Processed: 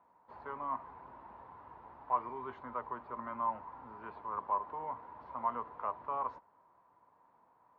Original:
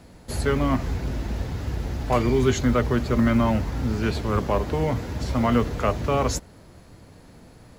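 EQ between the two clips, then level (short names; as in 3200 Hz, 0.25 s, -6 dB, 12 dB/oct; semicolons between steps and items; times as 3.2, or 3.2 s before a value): band-pass 990 Hz, Q 9; air absorption 330 m; +1.5 dB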